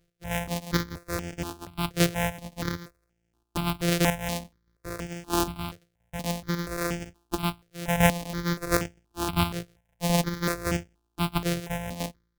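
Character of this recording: a buzz of ramps at a fixed pitch in blocks of 256 samples; chopped level 1.5 Hz, depth 60%, duty 15%; notches that jump at a steady rate 4.2 Hz 250–4000 Hz

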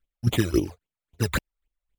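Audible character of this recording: chopped level 3.7 Hz, depth 65%, duty 20%; aliases and images of a low sample rate 5.5 kHz, jitter 0%; phasing stages 12, 3.7 Hz, lowest notch 280–1700 Hz; MP3

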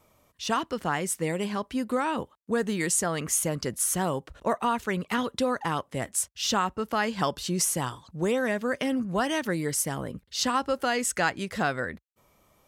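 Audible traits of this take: noise floor -67 dBFS; spectral tilt -3.5 dB/octave

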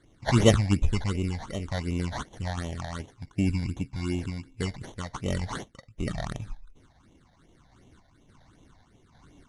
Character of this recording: random-step tremolo; aliases and images of a low sample rate 2.5 kHz, jitter 0%; phasing stages 8, 2.7 Hz, lowest notch 350–1500 Hz; MP3

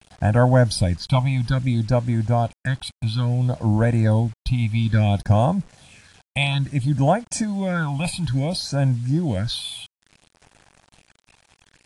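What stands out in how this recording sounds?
phasing stages 6, 0.59 Hz, lowest notch 400–4400 Hz; a quantiser's noise floor 8-bit, dither none; AAC

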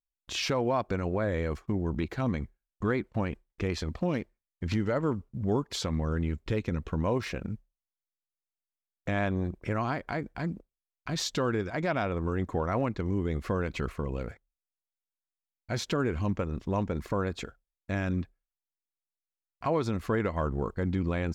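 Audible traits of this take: noise floor -93 dBFS; spectral tilt -6.0 dB/octave

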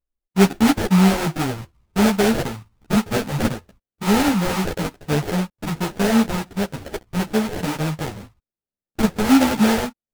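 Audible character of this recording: aliases and images of a low sample rate 1.1 kHz, jitter 20%; a shimmering, thickened sound

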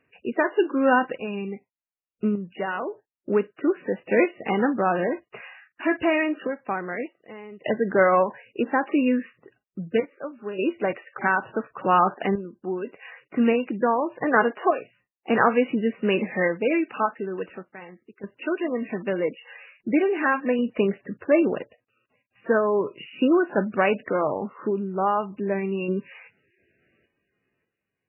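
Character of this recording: random-step tremolo 1.7 Hz, depth 90%; MP3

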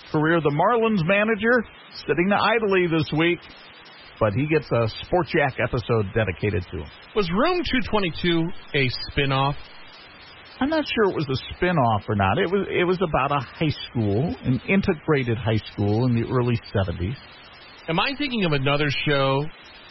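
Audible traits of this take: a quantiser's noise floor 6-bit, dither triangular; MP3

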